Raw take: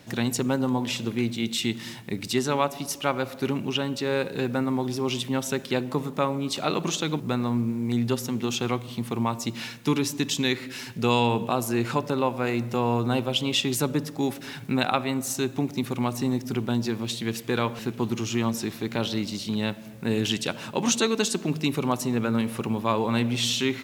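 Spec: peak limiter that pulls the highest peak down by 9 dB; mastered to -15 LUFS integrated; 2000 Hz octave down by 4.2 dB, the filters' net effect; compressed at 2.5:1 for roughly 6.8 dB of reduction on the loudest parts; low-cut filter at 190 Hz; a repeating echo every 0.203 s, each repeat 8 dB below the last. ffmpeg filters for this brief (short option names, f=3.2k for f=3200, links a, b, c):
-af "highpass=190,equalizer=f=2k:t=o:g=-6,acompressor=threshold=-30dB:ratio=2.5,alimiter=limit=-23.5dB:level=0:latency=1,aecho=1:1:203|406|609|812|1015:0.398|0.159|0.0637|0.0255|0.0102,volume=19dB"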